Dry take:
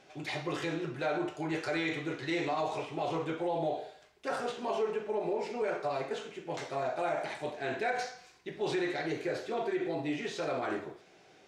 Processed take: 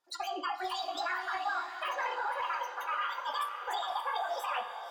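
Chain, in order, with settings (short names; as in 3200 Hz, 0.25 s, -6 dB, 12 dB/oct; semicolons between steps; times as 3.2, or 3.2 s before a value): formant shift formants -3 st; dynamic EQ 3900 Hz, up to -5 dB, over -55 dBFS, Q 0.8; limiter -27 dBFS, peak gain reduction 6 dB; spectral noise reduction 26 dB; diffused feedback echo 1.384 s, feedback 54%, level -9 dB; spring tank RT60 1.6 s, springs 38/44/60 ms, chirp 50 ms, DRR 9 dB; speed mistake 33 rpm record played at 78 rpm; gain +1.5 dB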